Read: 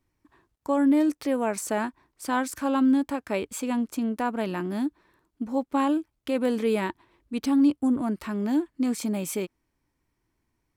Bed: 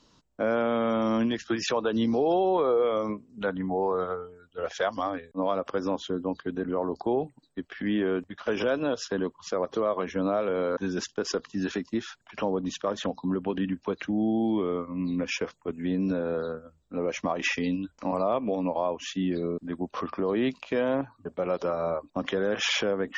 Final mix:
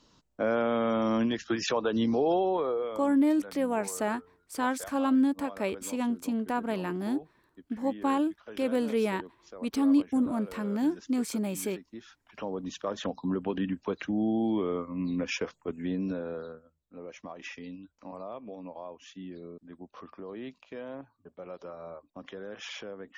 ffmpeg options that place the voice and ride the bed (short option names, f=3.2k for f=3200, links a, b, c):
-filter_complex "[0:a]adelay=2300,volume=-3dB[a];[1:a]volume=13.5dB,afade=t=out:st=2.3:d=0.82:silence=0.16788,afade=t=in:st=11.89:d=1.36:silence=0.177828,afade=t=out:st=15.66:d=1.08:silence=0.237137[b];[a][b]amix=inputs=2:normalize=0"